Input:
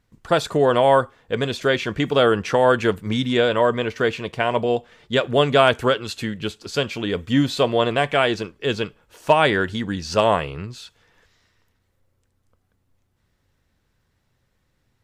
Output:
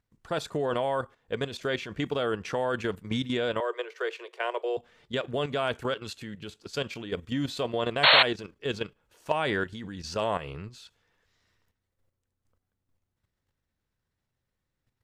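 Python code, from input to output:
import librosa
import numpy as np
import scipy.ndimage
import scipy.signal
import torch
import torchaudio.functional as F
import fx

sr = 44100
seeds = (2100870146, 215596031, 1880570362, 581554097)

y = fx.level_steps(x, sr, step_db=11)
y = fx.cheby_ripple_highpass(y, sr, hz=350.0, ripple_db=3, at=(3.6, 4.77))
y = fx.spec_paint(y, sr, seeds[0], shape='noise', start_s=8.03, length_s=0.2, low_hz=500.0, high_hz=4400.0, level_db=-12.0)
y = y * librosa.db_to_amplitude(-5.5)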